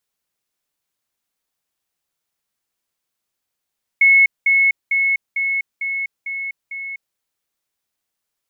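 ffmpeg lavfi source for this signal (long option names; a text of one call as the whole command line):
ffmpeg -f lavfi -i "aevalsrc='pow(10,(-8-3*floor(t/0.45))/20)*sin(2*PI*2190*t)*clip(min(mod(t,0.45),0.25-mod(t,0.45))/0.005,0,1)':duration=3.15:sample_rate=44100" out.wav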